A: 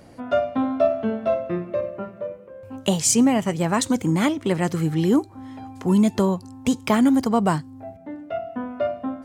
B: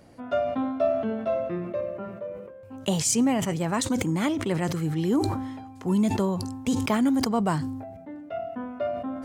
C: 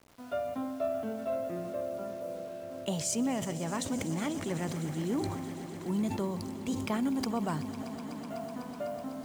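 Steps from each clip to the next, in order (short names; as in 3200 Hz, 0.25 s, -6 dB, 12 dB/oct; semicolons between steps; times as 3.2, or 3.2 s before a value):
sustainer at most 44 dB/s; gain -5.5 dB
bit-crush 8-bit; swelling echo 0.125 s, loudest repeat 5, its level -17 dB; gain -8.5 dB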